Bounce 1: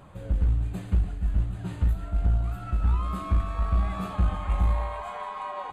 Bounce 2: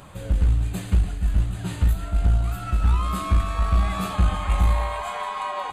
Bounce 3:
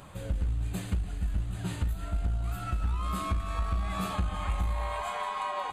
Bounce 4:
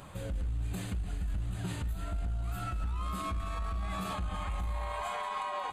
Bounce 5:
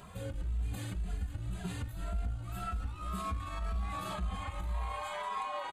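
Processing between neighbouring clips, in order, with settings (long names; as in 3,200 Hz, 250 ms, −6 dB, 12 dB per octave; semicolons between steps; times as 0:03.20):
high-shelf EQ 2,400 Hz +11.5 dB; level +4 dB
downward compressor, threshold −22 dBFS, peak gain reduction 8.5 dB; level −4 dB
brickwall limiter −27.5 dBFS, peak gain reduction 10.5 dB
barber-pole flanger 2.6 ms +1.9 Hz; level +1 dB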